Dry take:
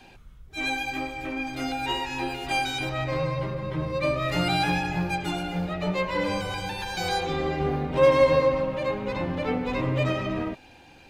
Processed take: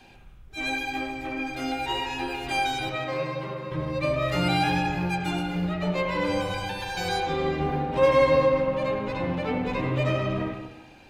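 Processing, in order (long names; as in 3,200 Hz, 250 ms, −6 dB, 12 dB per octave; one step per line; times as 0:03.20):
0:02.88–0:03.72: high-pass filter 210 Hz 12 dB per octave
on a send: convolution reverb RT60 1.0 s, pre-delay 61 ms, DRR 4 dB
on the sum: level −1.5 dB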